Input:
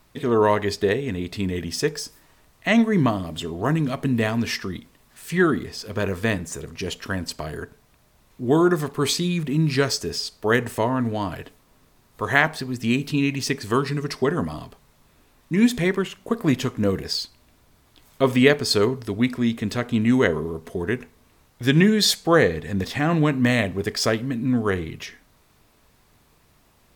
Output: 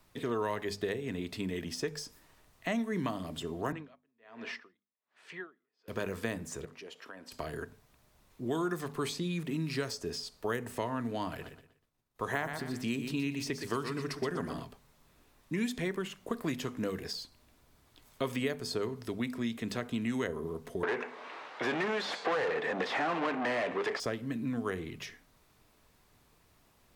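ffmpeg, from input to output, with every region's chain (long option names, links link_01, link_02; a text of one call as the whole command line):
ffmpeg -i in.wav -filter_complex "[0:a]asettb=1/sr,asplit=3[link_01][link_02][link_03];[link_01]atrim=end=3.724[link_04];[link_02]atrim=start=3.72:end=5.88,asetpts=PTS-STARTPTS,afade=type=in:duration=0.004:curve=qsin,afade=type=out:start_time=2.156:duration=0.004:curve=qsin,highpass=450,lowpass=2800,aecho=1:1:163:0.0794,atrim=end_sample=95256,aeval=exprs='val(0)*pow(10,-40*(0.5-0.5*cos(2*PI*1.3*n/s))/20)':channel_layout=same[link_05];[link_03]atrim=start=5.876[link_06];[link_04][link_05]acrossfade=duration=0.004:curve1=hsin:curve2=qsin[link_07];[link_07][link_06]acrossfade=duration=0.004:curve1=qsin:curve2=hsin,asettb=1/sr,asplit=3[link_08][link_09][link_10];[link_08]atrim=end=6.654[link_11];[link_09]atrim=start=6.65:end=7.32,asetpts=PTS-STARTPTS,afade=type=in:duration=0.004:curve=qsin,afade=type=out:start_time=0.666:duration=0.004:curve=qsin,highpass=370,highshelf=frequency=4200:gain=-11,acompressor=threshold=-41dB:ratio=2.5:attack=3.2:release=140:knee=1:detection=peak[link_12];[link_10]atrim=start=7.316[link_13];[link_11][link_12]acrossfade=duration=0.004:curve1=hsin:curve2=qsin[link_14];[link_14][link_13]acrossfade=duration=0.004:curve1=qsin:curve2=hsin,asettb=1/sr,asplit=3[link_15][link_16][link_17];[link_15]atrim=end=11.294[link_18];[link_16]atrim=start=11.29:end=14.63,asetpts=PTS-STARTPTS,afade=type=in:duration=0.004:curve=qsin,afade=type=out:start_time=3.336:duration=0.004:curve=qsin,agate=range=-33dB:threshold=-47dB:ratio=3:release=100:detection=peak,aecho=1:1:121|242|363:0.335|0.0971|0.0282,atrim=end_sample=147294[link_19];[link_17]atrim=start=14.626[link_20];[link_18][link_19]acrossfade=duration=0.004:curve1=hsin:curve2=qsin[link_21];[link_21][link_20]acrossfade=duration=0.004:curve1=qsin:curve2=hsin,asettb=1/sr,asplit=3[link_22][link_23][link_24];[link_22]atrim=end=20.834[link_25];[link_23]atrim=start=20.83:end=24,asetpts=PTS-STARTPTS,afade=type=in:duration=0.004:curve=qsin,afade=type=out:start_time=3.166:duration=0.004:curve=qsin,asplit=2[link_26][link_27];[link_27]highpass=frequency=720:poles=1,volume=34dB,asoftclip=type=tanh:threshold=-4dB[link_28];[link_26][link_28]amix=inputs=2:normalize=0,lowpass=frequency=2400:poles=1,volume=-6dB,highpass=450,lowpass=3200[link_29];[link_24]atrim=start=23.996[link_30];[link_25][link_29]acrossfade=duration=0.004:curve1=hsin:curve2=qsin[link_31];[link_31][link_30]acrossfade=duration=0.004:curve1=qsin:curve2=hsin,bandreject=frequency=50:width_type=h:width=6,bandreject=frequency=100:width_type=h:width=6,bandreject=frequency=150:width_type=h:width=6,bandreject=frequency=200:width_type=h:width=6,bandreject=frequency=250:width_type=h:width=6,acrossover=split=160|1300|7100[link_32][link_33][link_34][link_35];[link_32]acompressor=threshold=-41dB:ratio=4[link_36];[link_33]acompressor=threshold=-26dB:ratio=4[link_37];[link_34]acompressor=threshold=-34dB:ratio=4[link_38];[link_35]acompressor=threshold=-44dB:ratio=4[link_39];[link_36][link_37][link_38][link_39]amix=inputs=4:normalize=0,volume=-6.5dB" out.wav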